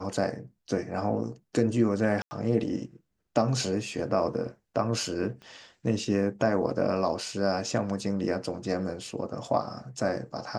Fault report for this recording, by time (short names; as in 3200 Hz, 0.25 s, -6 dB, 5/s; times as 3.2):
2.22–2.31 gap 90 ms
5.42 pop -34 dBFS